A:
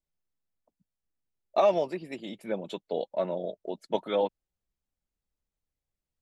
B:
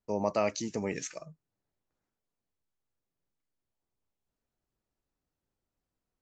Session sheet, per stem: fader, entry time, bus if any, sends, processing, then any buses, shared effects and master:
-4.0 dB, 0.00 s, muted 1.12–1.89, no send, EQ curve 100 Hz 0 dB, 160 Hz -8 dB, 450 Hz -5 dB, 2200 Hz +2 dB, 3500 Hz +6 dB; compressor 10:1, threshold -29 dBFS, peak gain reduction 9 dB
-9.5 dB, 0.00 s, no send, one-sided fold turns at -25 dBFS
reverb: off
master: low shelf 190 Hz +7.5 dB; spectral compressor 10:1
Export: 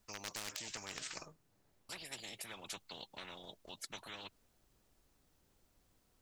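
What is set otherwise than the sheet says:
stem A -4.0 dB -> -14.5 dB; master: missing low shelf 190 Hz +7.5 dB

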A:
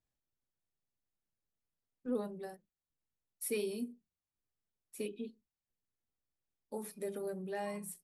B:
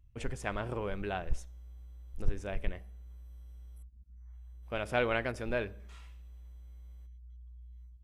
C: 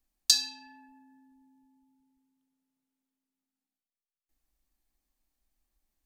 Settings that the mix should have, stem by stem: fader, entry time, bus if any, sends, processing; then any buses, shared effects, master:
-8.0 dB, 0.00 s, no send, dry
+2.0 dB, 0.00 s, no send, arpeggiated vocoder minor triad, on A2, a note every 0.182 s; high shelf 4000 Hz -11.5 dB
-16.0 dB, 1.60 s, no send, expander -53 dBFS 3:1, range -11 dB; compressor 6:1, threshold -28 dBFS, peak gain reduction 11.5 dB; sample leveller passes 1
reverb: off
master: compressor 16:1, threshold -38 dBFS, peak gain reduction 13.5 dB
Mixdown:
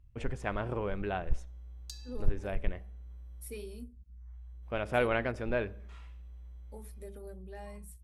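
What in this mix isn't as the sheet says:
stem B: missing arpeggiated vocoder minor triad, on A2, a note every 0.182 s; stem C: missing sample leveller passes 1; master: missing compressor 16:1, threshold -38 dBFS, peak gain reduction 13.5 dB

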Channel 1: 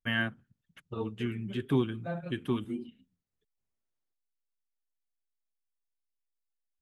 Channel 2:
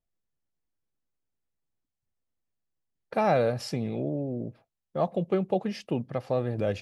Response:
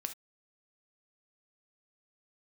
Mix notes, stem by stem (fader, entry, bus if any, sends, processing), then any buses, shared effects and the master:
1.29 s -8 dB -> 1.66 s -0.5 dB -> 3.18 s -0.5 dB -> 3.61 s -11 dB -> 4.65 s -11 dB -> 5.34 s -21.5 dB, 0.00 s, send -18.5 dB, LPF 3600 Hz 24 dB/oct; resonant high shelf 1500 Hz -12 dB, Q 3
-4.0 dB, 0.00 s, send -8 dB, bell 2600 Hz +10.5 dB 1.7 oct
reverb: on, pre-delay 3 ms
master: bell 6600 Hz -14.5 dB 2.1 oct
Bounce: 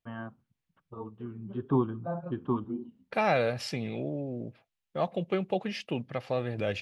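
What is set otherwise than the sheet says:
stem 2: send off; master: missing bell 6600 Hz -14.5 dB 2.1 oct

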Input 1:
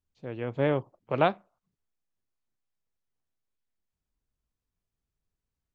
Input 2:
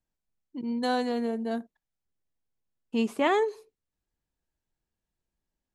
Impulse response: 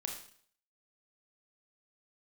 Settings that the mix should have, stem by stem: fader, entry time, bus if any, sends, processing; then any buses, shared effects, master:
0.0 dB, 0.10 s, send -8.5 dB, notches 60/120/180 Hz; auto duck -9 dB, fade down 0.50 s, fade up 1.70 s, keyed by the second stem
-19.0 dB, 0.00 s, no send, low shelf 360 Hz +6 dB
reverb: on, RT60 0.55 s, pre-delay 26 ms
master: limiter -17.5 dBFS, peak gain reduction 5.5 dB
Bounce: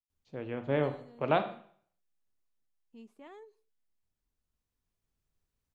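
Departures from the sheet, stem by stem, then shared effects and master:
stem 2 -19.0 dB -> -29.0 dB; master: missing limiter -17.5 dBFS, peak gain reduction 5.5 dB

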